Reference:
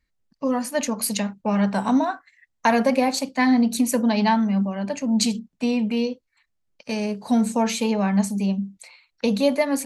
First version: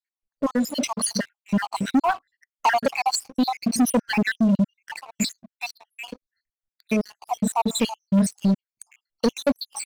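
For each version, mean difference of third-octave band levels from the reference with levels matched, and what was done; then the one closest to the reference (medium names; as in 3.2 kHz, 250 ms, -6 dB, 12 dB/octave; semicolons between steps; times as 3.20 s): 10.0 dB: random holes in the spectrogram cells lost 74%; waveshaping leveller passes 3; trim -3.5 dB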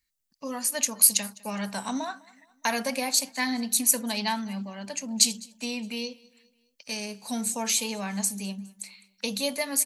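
6.0 dB: pre-emphasis filter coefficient 0.9; on a send: feedback delay 206 ms, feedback 47%, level -24 dB; on the sum: trim +7 dB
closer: second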